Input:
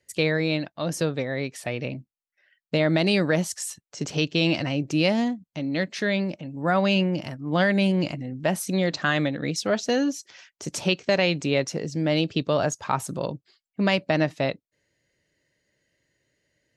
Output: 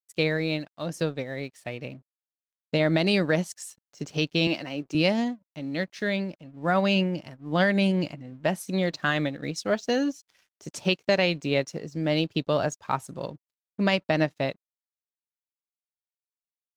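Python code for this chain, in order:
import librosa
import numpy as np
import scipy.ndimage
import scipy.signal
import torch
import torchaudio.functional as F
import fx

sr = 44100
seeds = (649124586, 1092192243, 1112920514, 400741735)

y = fx.highpass(x, sr, hz=220.0, slope=12, at=(4.47, 4.95))
y = np.sign(y) * np.maximum(np.abs(y) - 10.0 ** (-51.5 / 20.0), 0.0)
y = fx.upward_expand(y, sr, threshold_db=-42.0, expansion=1.5)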